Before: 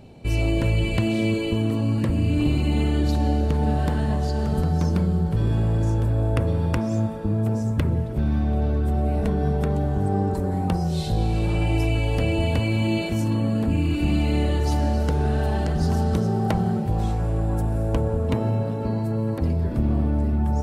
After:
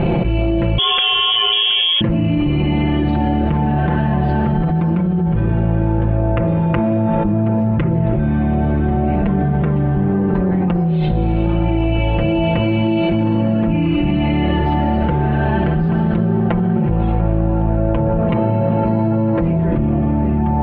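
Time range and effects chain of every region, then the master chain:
0.78–2.01 s: high-pass 41 Hz + frequency inversion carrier 3.4 kHz
whole clip: steep low-pass 2.9 kHz 36 dB/octave; comb 5.8 ms, depth 84%; level flattener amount 100%

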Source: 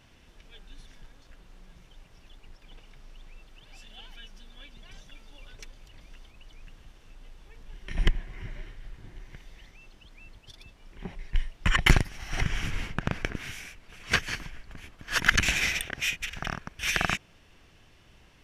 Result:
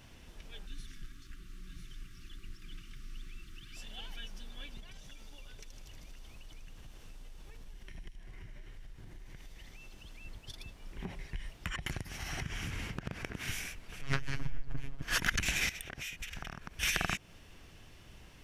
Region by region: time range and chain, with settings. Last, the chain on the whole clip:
0.66–3.77 s: brick-wall FIR band-stop 400–1100 Hz + delay 998 ms -7.5 dB
4.80–10.25 s: compression, threshold -48 dBFS + feedback echo behind a high-pass 78 ms, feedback 77%, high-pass 4.1 kHz, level -5 dB
11.00–13.48 s: high-pass 46 Hz + compression, threshold -37 dBFS
14.01–15.02 s: robot voice 137 Hz + tilt EQ -2.5 dB/octave + loudspeaker Doppler distortion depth 0.2 ms
15.69–16.80 s: compression 5:1, threshold -41 dBFS + short-mantissa float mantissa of 8-bit
whole clip: treble shelf 7.3 kHz +8 dB; compression 5:1, threshold -29 dBFS; bass shelf 370 Hz +3.5 dB

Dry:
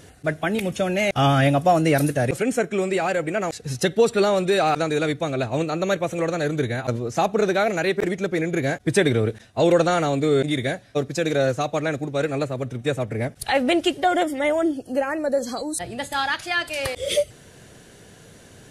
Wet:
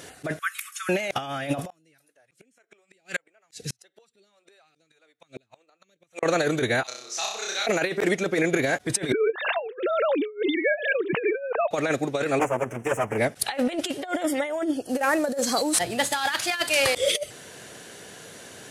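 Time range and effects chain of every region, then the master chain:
0.39–0.89 s: brick-wall FIR high-pass 1.1 kHz + peaking EQ 3.1 kHz -13.5 dB 1.8 oct
1.70–6.23 s: phase shifter stages 2, 1.7 Hz, lowest notch 120–1100 Hz + inverted gate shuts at -20 dBFS, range -42 dB
6.83–7.67 s: band-pass filter 5.2 kHz, Q 1.7 + flutter echo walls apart 5.4 m, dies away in 0.72 s
9.12–11.71 s: formants replaced by sine waves + swell ahead of each attack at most 95 dB/s
12.39–13.18 s: comb filter that takes the minimum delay 9.1 ms + Butterworth band-stop 4.1 kHz, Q 1.2
14.89–16.98 s: CVSD coder 64 kbps + high-pass 47 Hz + tone controls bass +4 dB, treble +3 dB
whole clip: high-pass 490 Hz 6 dB/octave; compressor with a negative ratio -27 dBFS, ratio -0.5; trim +3.5 dB

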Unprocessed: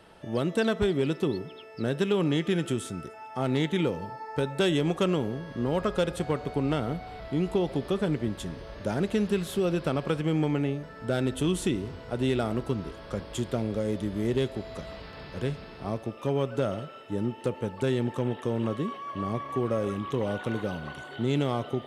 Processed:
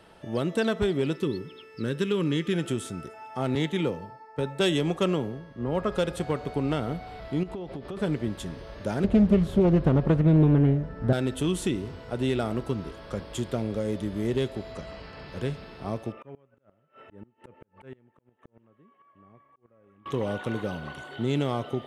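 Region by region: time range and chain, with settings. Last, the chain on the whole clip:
1.16–2.54 s: peaking EQ 750 Hz -13.5 dB 0.43 oct + band-stop 650 Hz, Q 5.4
3.55–5.92 s: band-stop 1.5 kHz, Q 27 + three bands expanded up and down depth 70%
7.43–7.97 s: treble shelf 5.3 kHz -11.5 dB + compression 10:1, threshold -32 dBFS
9.04–11.13 s: tilt EQ -3.5 dB/octave + loudspeaker Doppler distortion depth 0.39 ms
14.72–15.28 s: low-pass 9.2 kHz + band-stop 3.6 kHz, Q 8.9
16.12–20.06 s: resonant high shelf 3.1 kHz -12.5 dB, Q 1.5 + slow attack 540 ms + inverted gate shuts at -32 dBFS, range -25 dB
whole clip: none

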